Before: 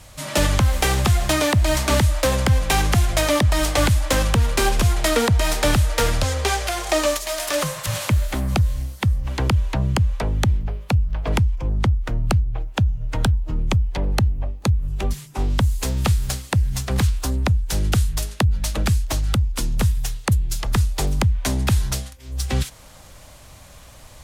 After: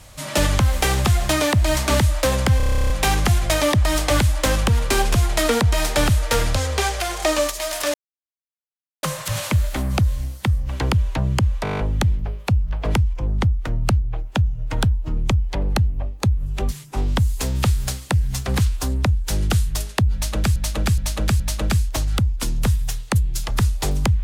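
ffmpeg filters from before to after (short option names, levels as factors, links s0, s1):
-filter_complex "[0:a]asplit=24[s0][s1][s2][s3][s4][s5][s6][s7][s8][s9][s10][s11][s12][s13][s14][s15][s16][s17][s18][s19][s20][s21][s22][s23];[s0]atrim=end=2.602[s24];[s1]atrim=start=2.568:end=2.602[s25];[s2]atrim=start=2.568:end=2.602[s26];[s3]atrim=start=2.568:end=2.602[s27];[s4]atrim=start=2.568:end=2.602[s28];[s5]atrim=start=2.568:end=2.602[s29];[s6]atrim=start=2.568:end=2.602[s30];[s7]atrim=start=2.568:end=2.602[s31];[s8]atrim=start=2.568:end=2.602[s32];[s9]atrim=start=2.568:end=2.602[s33];[s10]atrim=start=2.568:end=2.602[s34];[s11]atrim=start=2.568:end=7.61,asetpts=PTS-STARTPTS,afade=t=out:st=5.038:d=0.004:c=hsin,apad=pad_dur=1.09[s35];[s12]atrim=start=7.61:end=10.232,asetpts=PTS-STARTPTS,afade=t=in:d=0.004:c=hsin[s36];[s13]atrim=start=10.208:end=10.232[s37];[s14]atrim=start=10.208:end=10.232[s38];[s15]atrim=start=10.208:end=10.232[s39];[s16]atrim=start=10.208:end=10.232[s40];[s17]atrim=start=10.208:end=10.232[s41];[s18]atrim=start=10.208:end=10.232[s42];[s19]atrim=start=10.208:end=10.232[s43];[s20]atrim=start=10.208:end=18.982[s44];[s21]atrim=start=18.558:end=18.982[s45];[s22]atrim=start=18.558:end=18.982[s46];[s23]atrim=start=18.558[s47];[s24][s25]acrossfade=d=0.004:c1=hsin:c2=hsin[s48];[s48][s26]acrossfade=d=0.004:c1=hsin:c2=hsin[s49];[s49][s27]acrossfade=d=0.004:c1=hsin:c2=hsin[s50];[s50][s28]acrossfade=d=0.004:c1=hsin:c2=hsin[s51];[s51][s29]acrossfade=d=0.004:c1=hsin:c2=hsin[s52];[s52][s30]acrossfade=d=0.004:c1=hsin:c2=hsin[s53];[s53][s31]acrossfade=d=0.004:c1=hsin:c2=hsin[s54];[s54][s32]acrossfade=d=0.004:c1=hsin:c2=hsin[s55];[s55][s33]acrossfade=d=0.004:c1=hsin:c2=hsin[s56];[s56][s34]acrossfade=d=0.004:c1=hsin:c2=hsin[s57];[s35][s36]concat=n=2:v=0:a=1[s58];[s57][s58]acrossfade=d=0.004:c1=hsin:c2=hsin[s59];[s59][s37]acrossfade=d=0.004:c1=hsin:c2=hsin[s60];[s60][s38]acrossfade=d=0.004:c1=hsin:c2=hsin[s61];[s61][s39]acrossfade=d=0.004:c1=hsin:c2=hsin[s62];[s62][s40]acrossfade=d=0.004:c1=hsin:c2=hsin[s63];[s63][s41]acrossfade=d=0.004:c1=hsin:c2=hsin[s64];[s64][s42]acrossfade=d=0.004:c1=hsin:c2=hsin[s65];[s65][s43]acrossfade=d=0.004:c1=hsin:c2=hsin[s66];[s66][s44]acrossfade=d=0.004:c1=hsin:c2=hsin[s67];[s67][s45]acrossfade=d=0.004:c1=hsin:c2=hsin[s68];[s68][s46]acrossfade=d=0.004:c1=hsin:c2=hsin[s69];[s69][s47]acrossfade=d=0.004:c1=hsin:c2=hsin"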